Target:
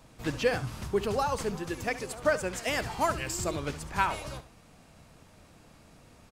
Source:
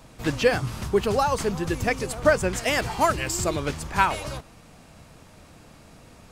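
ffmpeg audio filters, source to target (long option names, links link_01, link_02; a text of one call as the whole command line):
ffmpeg -i in.wav -filter_complex "[0:a]asettb=1/sr,asplit=3[link_01][link_02][link_03];[link_01]atrim=end=1.564[link_04];[link_02]atrim=start=1.56:end=2.67,asetpts=PTS-STARTPTS,afade=type=in:duration=0.004:curve=qsin,afade=type=out:start_time=1.106:duration=0.004:curve=qsin,lowshelf=frequency=170:gain=-8[link_05];[link_03]atrim=start=2.666[link_06];[link_04][link_05]acrossfade=duration=0.004:curve1=hsin:curve2=qsin[link_07];[link_07][link_06]acrossfade=duration=0.004:curve1=qsin:curve2=hsin,aecho=1:1:70:0.188,volume=-6.5dB" out.wav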